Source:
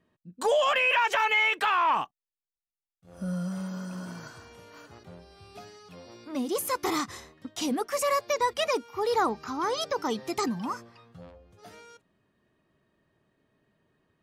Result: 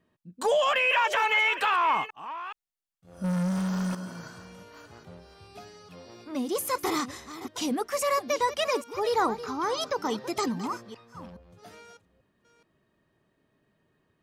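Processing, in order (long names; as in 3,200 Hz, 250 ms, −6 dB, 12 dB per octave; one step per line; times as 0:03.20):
delay that plays each chunk backwards 421 ms, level −13 dB
0:03.24–0:03.95: leveller curve on the samples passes 3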